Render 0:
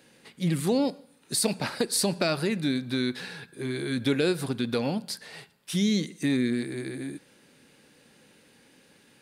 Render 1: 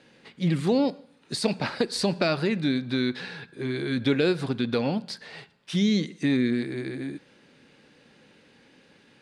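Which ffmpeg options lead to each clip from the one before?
ffmpeg -i in.wav -af "lowpass=4700,volume=2dB" out.wav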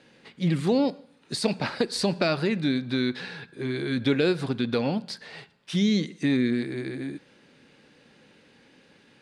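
ffmpeg -i in.wav -af anull out.wav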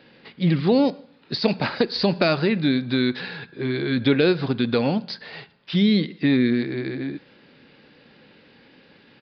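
ffmpeg -i in.wav -af "aresample=11025,aresample=44100,volume=4.5dB" out.wav

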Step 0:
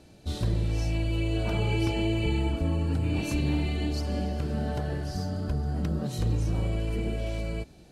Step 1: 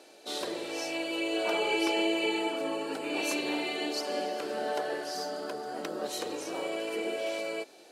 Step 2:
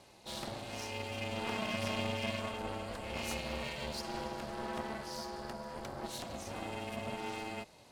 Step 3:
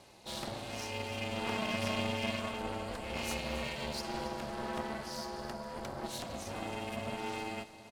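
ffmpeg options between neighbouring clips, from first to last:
ffmpeg -i in.wav -af "highpass=frequency=380:width=0.5412,highpass=frequency=380:width=1.3066,volume=5dB" out.wav
ffmpeg -i in.wav -af "aeval=exprs='clip(val(0),-1,0.0119)':channel_layout=same,aeval=exprs='val(0)*sin(2*PI*230*n/s)':channel_layout=same,volume=-2dB" out.wav
ffmpeg -i in.wav -af "aecho=1:1:274:0.178,volume=1.5dB" out.wav

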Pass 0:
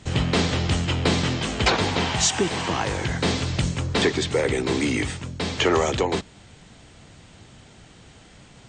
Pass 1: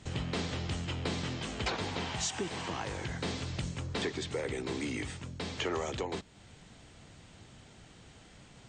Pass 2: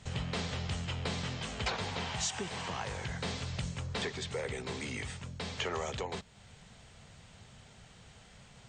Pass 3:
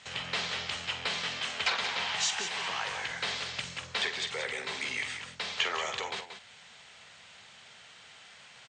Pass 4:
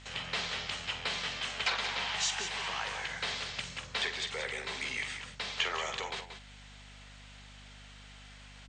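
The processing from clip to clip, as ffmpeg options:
ffmpeg -i in.wav -af "acompressor=threshold=-37dB:ratio=1.5,volume=-6.5dB" out.wav
ffmpeg -i in.wav -af "equalizer=frequency=310:width_type=o:width=0.4:gain=-14.5" out.wav
ffmpeg -i in.wav -filter_complex "[0:a]bandpass=frequency=2600:width_type=q:width=0.65:csg=0,asplit=2[link_01][link_02];[link_02]aecho=0:1:47|181:0.282|0.355[link_03];[link_01][link_03]amix=inputs=2:normalize=0,volume=8dB" out.wav
ffmpeg -i in.wav -af "aeval=exprs='val(0)+0.00282*(sin(2*PI*50*n/s)+sin(2*PI*2*50*n/s)/2+sin(2*PI*3*50*n/s)/3+sin(2*PI*4*50*n/s)/4+sin(2*PI*5*50*n/s)/5)':channel_layout=same,volume=-2dB" out.wav

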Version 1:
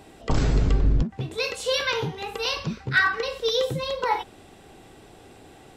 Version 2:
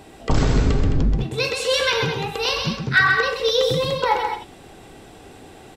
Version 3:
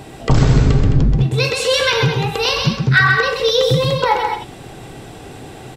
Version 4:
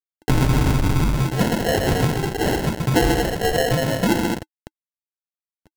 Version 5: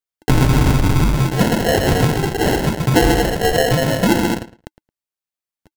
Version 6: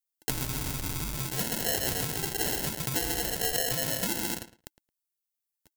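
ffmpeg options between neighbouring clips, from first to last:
ffmpeg -i in.wav -af "aecho=1:1:130|213:0.531|0.335,volume=4dB" out.wav
ffmpeg -i in.wav -filter_complex "[0:a]equalizer=frequency=130:width_type=o:width=0.47:gain=9.5,asplit=2[link_01][link_02];[link_02]acompressor=threshold=-26dB:ratio=6,volume=0dB[link_03];[link_01][link_03]amix=inputs=2:normalize=0,volume=1.5dB" out.wav
ffmpeg -i in.wav -af "acrusher=bits=3:mix=0:aa=0.000001,equalizer=frequency=315:width_type=o:width=0.33:gain=9,equalizer=frequency=1000:width_type=o:width=0.33:gain=7,equalizer=frequency=2500:width_type=o:width=0.33:gain=11,acrusher=samples=37:mix=1:aa=0.000001,volume=-6.5dB" out.wav
ffmpeg -i in.wav -filter_complex "[0:a]asplit=2[link_01][link_02];[link_02]adelay=110,lowpass=frequency=4700:poles=1,volume=-16.5dB,asplit=2[link_03][link_04];[link_04]adelay=110,lowpass=frequency=4700:poles=1,volume=0.16[link_05];[link_01][link_03][link_05]amix=inputs=3:normalize=0,volume=4dB" out.wav
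ffmpeg -i in.wav -af "acompressor=threshold=-17dB:ratio=6,crystalizer=i=6:c=0,volume=-15dB" out.wav

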